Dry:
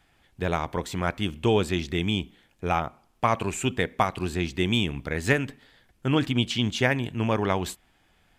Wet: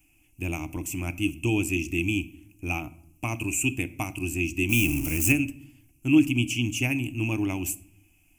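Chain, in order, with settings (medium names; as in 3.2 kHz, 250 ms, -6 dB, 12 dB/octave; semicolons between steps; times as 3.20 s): 4.69–5.32 s: jump at every zero crossing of -26 dBFS; FFT filter 110 Hz 0 dB, 200 Hz -10 dB, 310 Hz +8 dB, 450 Hz -20 dB, 720 Hz -10 dB, 1.8 kHz -20 dB, 2.6 kHz +10 dB, 3.8 kHz -25 dB, 5.9 kHz +4 dB, 14 kHz +14 dB; reverberation RT60 0.65 s, pre-delay 7 ms, DRR 14.5 dB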